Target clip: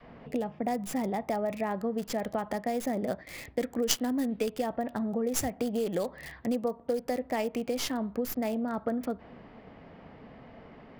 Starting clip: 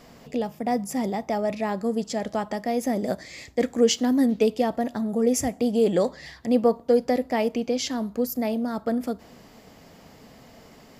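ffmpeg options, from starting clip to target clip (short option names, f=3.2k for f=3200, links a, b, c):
-filter_complex "[0:a]asettb=1/sr,asplit=3[a][b][c];[a]atrim=end=2.534[d];[b]atrim=start=2.53:end=3.27,asetpts=PTS-STARTPTS,afade=t=in:d=0.004:c=qsin,afade=t=out:st=0.736:d=0.004:c=qsin,agate=range=-33dB:threshold=-30dB:ratio=3:detection=peak[e];[c]atrim=start=3.266[f];[d][e]acrossfade=d=0.004:c1=hsin:c2=qsin[g];[g][f]acrossfade=d=0.004:c1=qsin:c2=hsin,adynamicequalizer=threshold=0.02:dfrequency=280:dqfactor=0.78:tfrequency=280:tqfactor=0.78:attack=5:release=100:ratio=0.375:range=2:mode=cutabove:tftype=bell,acrossover=split=2900[h][i];[h]acompressor=threshold=-27dB:ratio=6[j];[i]acrusher=bits=4:dc=4:mix=0:aa=0.000001[k];[j][k]amix=inputs=2:normalize=0"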